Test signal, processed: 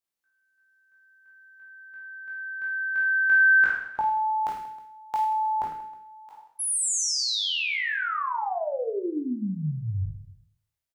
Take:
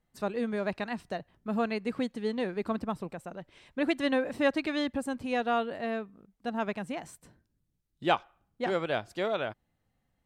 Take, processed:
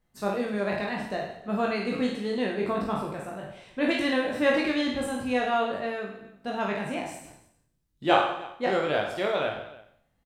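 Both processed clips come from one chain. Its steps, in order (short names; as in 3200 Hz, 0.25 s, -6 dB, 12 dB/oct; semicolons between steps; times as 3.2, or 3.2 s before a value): spectral trails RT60 0.62 s; reverse bouncing-ball echo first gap 20 ms, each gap 1.6×, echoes 5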